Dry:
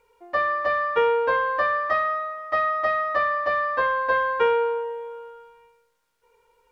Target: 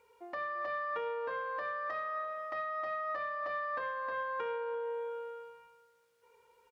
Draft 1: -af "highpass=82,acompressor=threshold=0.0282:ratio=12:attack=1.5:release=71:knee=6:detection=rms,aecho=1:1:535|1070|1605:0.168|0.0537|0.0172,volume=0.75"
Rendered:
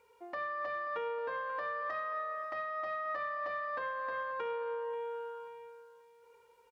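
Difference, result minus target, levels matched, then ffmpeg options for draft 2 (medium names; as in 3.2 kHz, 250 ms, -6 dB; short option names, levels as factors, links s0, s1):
echo 192 ms late
-af "highpass=82,acompressor=threshold=0.0282:ratio=12:attack=1.5:release=71:knee=6:detection=rms,aecho=1:1:343|686|1029:0.168|0.0537|0.0172,volume=0.75"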